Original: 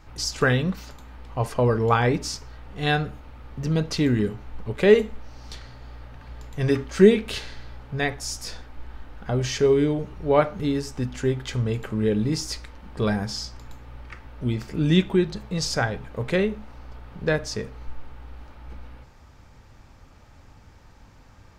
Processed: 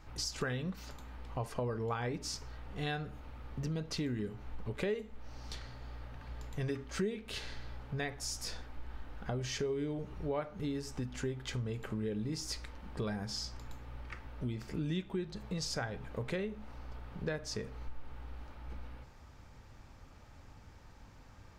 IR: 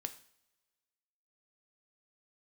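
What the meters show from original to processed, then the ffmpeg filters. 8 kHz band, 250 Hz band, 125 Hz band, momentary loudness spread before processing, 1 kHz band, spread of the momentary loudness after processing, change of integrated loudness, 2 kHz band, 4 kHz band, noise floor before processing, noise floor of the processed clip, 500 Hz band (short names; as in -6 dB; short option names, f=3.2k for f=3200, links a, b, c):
-9.0 dB, -15.0 dB, -13.0 dB, 22 LU, -15.0 dB, 20 LU, -16.0 dB, -14.5 dB, -10.5 dB, -50 dBFS, -55 dBFS, -16.5 dB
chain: -af "acompressor=threshold=-30dB:ratio=4,volume=-5dB"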